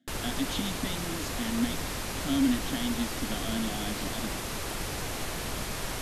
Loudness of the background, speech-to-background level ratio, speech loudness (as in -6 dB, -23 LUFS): -34.0 LUFS, 0.5 dB, -33.5 LUFS